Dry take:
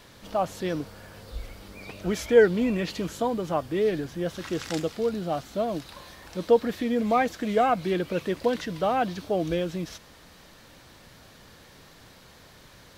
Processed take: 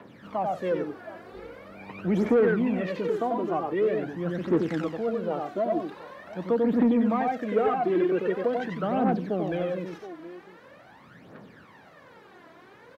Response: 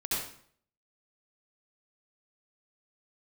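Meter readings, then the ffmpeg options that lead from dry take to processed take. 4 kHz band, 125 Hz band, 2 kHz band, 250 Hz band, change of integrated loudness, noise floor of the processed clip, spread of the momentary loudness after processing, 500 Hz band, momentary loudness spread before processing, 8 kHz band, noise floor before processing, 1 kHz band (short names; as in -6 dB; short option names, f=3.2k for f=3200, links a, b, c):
-9.5 dB, 0.0 dB, -3.0 dB, +2.5 dB, 0.0 dB, -52 dBFS, 20 LU, -1.0 dB, 19 LU, under -15 dB, -52 dBFS, -1.5 dB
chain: -filter_complex "[0:a]highpass=93,equalizer=f=230:w=1.5:g=2.5,aecho=1:1:92|138|719:0.631|0.15|0.1,aphaser=in_gain=1:out_gain=1:delay=3.1:decay=0.66:speed=0.44:type=triangular,asoftclip=type=tanh:threshold=-14dB,acrossover=split=480|3000[a][b][c];[b]acompressor=threshold=-29dB:ratio=2.5[d];[a][d][c]amix=inputs=3:normalize=0,acrossover=split=150 2300:gain=0.2 1 0.0891[e][f][g];[e][f][g]amix=inputs=3:normalize=0"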